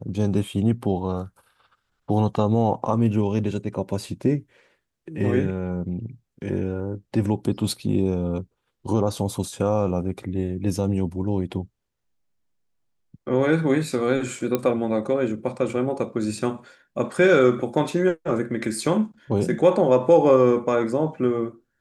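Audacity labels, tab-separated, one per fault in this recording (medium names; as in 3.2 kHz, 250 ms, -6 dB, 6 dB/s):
14.550000	14.550000	pop -9 dBFS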